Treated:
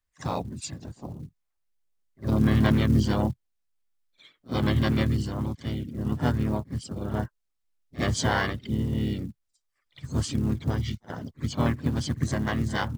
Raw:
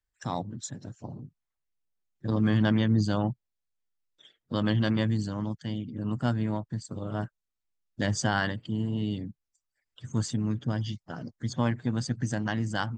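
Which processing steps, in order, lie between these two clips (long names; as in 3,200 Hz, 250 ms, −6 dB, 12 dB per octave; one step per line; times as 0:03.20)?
pitch-shifted copies added −7 semitones −3 dB, +3 semitones −6 dB
echo ahead of the sound 56 ms −19.5 dB
floating-point word with a short mantissa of 4 bits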